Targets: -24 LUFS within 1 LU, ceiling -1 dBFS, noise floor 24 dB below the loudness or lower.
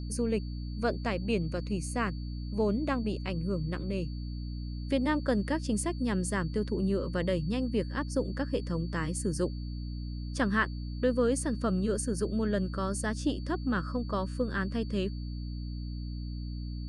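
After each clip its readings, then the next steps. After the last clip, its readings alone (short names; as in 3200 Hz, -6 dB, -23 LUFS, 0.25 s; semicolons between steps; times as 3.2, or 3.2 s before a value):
hum 60 Hz; harmonics up to 300 Hz; hum level -34 dBFS; steady tone 4500 Hz; tone level -54 dBFS; loudness -32.0 LUFS; peak -15.5 dBFS; loudness target -24.0 LUFS
-> notches 60/120/180/240/300 Hz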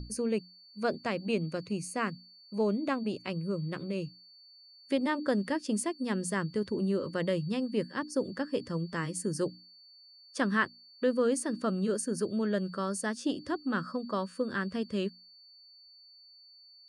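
hum none; steady tone 4500 Hz; tone level -54 dBFS
-> notch 4500 Hz, Q 30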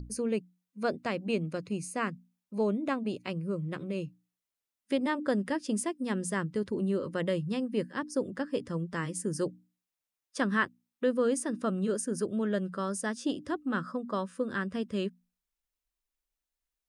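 steady tone none; loudness -32.5 LUFS; peak -16.0 dBFS; loudness target -24.0 LUFS
-> gain +8.5 dB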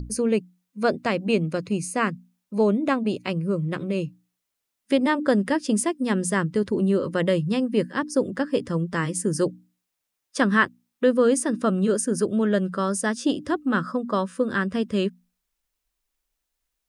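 loudness -24.0 LUFS; peak -7.5 dBFS; noise floor -81 dBFS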